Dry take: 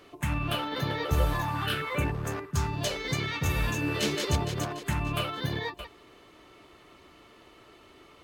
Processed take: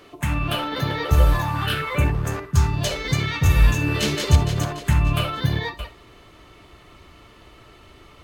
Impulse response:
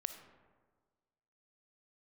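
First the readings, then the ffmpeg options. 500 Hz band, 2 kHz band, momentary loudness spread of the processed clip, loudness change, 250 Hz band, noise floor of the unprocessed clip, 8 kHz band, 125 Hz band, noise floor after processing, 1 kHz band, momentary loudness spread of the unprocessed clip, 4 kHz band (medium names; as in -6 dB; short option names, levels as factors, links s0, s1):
+4.5 dB, +6.0 dB, 7 LU, +8.5 dB, +6.0 dB, -56 dBFS, +5.5 dB, +10.5 dB, -49 dBFS, +5.5 dB, 5 LU, +5.5 dB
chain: -filter_complex "[0:a]asubboost=boost=3:cutoff=160[s0];[1:a]atrim=start_sample=2205,atrim=end_sample=3528[s1];[s0][s1]afir=irnorm=-1:irlink=0,volume=2.37"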